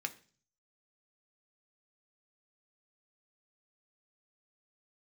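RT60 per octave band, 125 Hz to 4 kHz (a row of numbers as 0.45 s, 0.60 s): 0.80 s, 0.55 s, 0.45 s, 0.40 s, 0.40 s, 0.50 s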